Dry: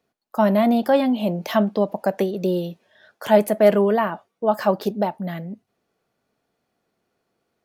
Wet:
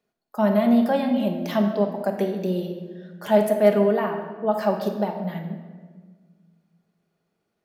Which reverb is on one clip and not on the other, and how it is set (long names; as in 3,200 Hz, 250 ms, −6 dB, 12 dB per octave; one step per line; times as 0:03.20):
rectangular room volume 1,400 cubic metres, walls mixed, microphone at 1.3 metres
level −5.5 dB